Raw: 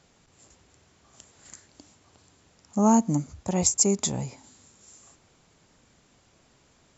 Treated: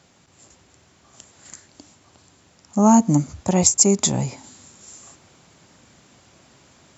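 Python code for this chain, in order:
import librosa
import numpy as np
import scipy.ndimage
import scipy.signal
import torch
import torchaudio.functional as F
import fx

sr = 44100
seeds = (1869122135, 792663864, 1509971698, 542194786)

p1 = scipy.signal.sosfilt(scipy.signal.butter(2, 73.0, 'highpass', fs=sr, output='sos'), x)
p2 = fx.notch(p1, sr, hz=450.0, q=12.0)
p3 = fx.rider(p2, sr, range_db=10, speed_s=0.5)
y = p2 + F.gain(torch.from_numpy(p3), 2.0).numpy()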